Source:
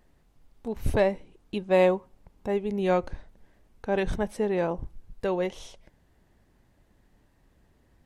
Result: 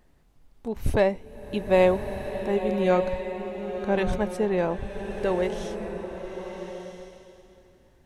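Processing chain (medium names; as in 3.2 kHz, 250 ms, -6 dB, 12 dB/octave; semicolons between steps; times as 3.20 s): swelling reverb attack 1300 ms, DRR 6 dB; trim +1.5 dB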